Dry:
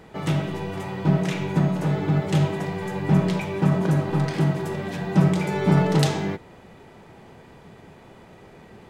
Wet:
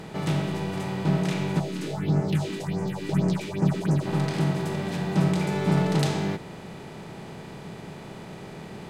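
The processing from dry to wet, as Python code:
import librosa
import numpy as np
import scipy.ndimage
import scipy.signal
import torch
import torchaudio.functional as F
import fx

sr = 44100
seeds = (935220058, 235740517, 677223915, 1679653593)

y = fx.bin_compress(x, sr, power=0.6)
y = fx.phaser_stages(y, sr, stages=4, low_hz=110.0, high_hz=3500.0, hz=fx.line((1.59, 0.97), (4.05, 3.9)), feedback_pct=35, at=(1.59, 4.05), fade=0.02)
y = y * librosa.db_to_amplitude(-6.0)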